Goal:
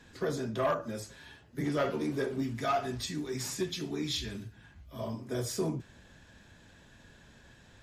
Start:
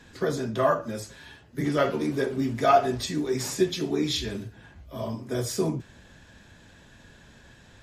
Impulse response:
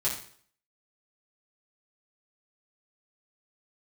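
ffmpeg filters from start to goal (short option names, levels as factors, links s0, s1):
-filter_complex "[0:a]asettb=1/sr,asplit=3[s0][s1][s2];[s0]atrim=end=2.434[s3];[s1]atrim=start=2.43:end=4.99,asetpts=PTS-STARTPTS,afade=t=in:d=0.004:c=qsin,afade=t=out:st=2.556:d=0.004:c=qsin,equalizer=f=520:t=o:w=1.6:g=-7[s4];[s2]atrim=start=4.986[s5];[s3][s4]acrossfade=d=0.004:c1=hsin:c2=qsin[s6];[s6][s5]acrossfade=d=0.004:c1=qsin:c2=hsin,aeval=exprs='0.316*(cos(1*acos(clip(val(0)/0.316,-1,1)))-cos(1*PI/2))+0.0355*(cos(5*acos(clip(val(0)/0.316,-1,1)))-cos(5*PI/2))':c=same,volume=0.376"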